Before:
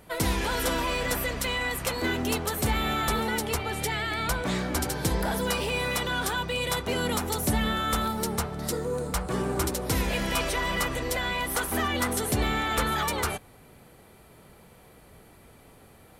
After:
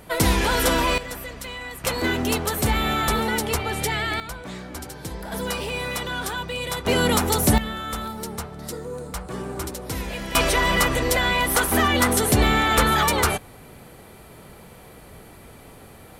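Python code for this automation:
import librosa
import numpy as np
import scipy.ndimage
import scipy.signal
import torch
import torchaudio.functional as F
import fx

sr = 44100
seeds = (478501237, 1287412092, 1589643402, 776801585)

y = fx.gain(x, sr, db=fx.steps((0.0, 7.0), (0.98, -5.5), (1.84, 4.5), (4.2, -7.0), (5.32, 0.0), (6.85, 8.0), (7.58, -3.0), (10.35, 8.0)))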